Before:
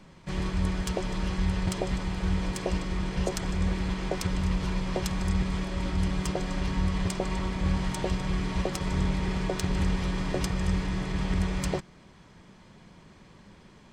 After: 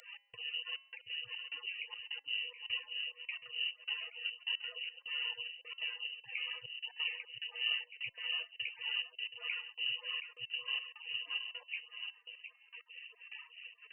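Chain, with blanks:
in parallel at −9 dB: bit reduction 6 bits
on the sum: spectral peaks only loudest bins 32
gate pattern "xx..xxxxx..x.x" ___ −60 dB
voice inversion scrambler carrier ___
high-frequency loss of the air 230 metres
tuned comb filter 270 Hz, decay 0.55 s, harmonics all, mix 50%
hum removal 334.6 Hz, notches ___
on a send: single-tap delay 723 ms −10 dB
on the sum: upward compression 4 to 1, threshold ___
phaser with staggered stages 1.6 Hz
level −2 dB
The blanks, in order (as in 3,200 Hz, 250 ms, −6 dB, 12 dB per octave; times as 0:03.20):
178 BPM, 2,900 Hz, 6, −35 dBFS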